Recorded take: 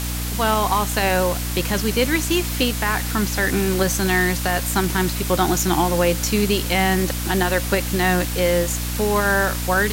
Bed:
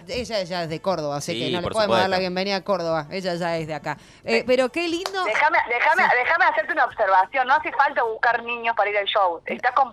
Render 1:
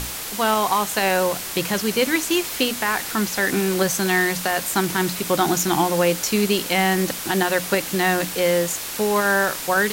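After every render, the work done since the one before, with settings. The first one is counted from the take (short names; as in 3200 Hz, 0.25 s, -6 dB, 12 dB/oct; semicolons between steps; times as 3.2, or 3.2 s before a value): notches 60/120/180/240/300 Hz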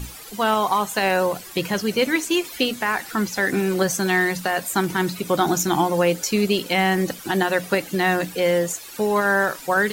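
denoiser 14 dB, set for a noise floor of -31 dBFS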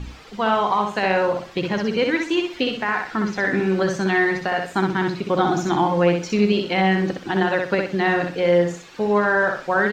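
air absorption 180 m; on a send: feedback echo 63 ms, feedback 28%, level -4.5 dB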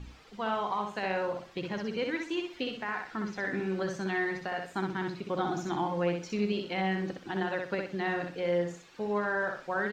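gain -12 dB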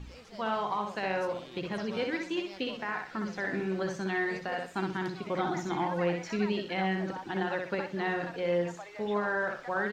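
add bed -25 dB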